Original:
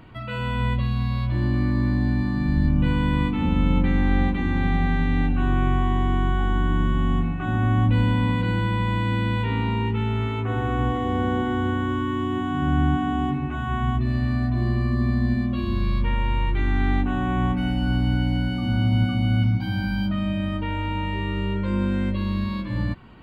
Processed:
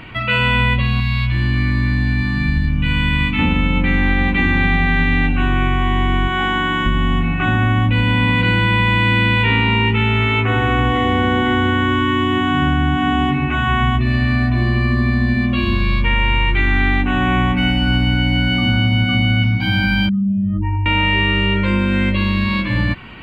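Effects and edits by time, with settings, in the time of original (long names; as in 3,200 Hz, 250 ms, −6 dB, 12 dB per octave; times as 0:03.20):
0:01.00–0:03.39: parametric band 520 Hz −13 dB 2 octaves
0:06.27–0:06.85: high-pass filter 210 Hz → 470 Hz 6 dB per octave
0:20.09–0:20.86: expanding power law on the bin magnitudes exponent 3.3
whole clip: downward compressor, threshold −21 dBFS; parametric band 2,400 Hz +13 dB 1.2 octaves; level +8.5 dB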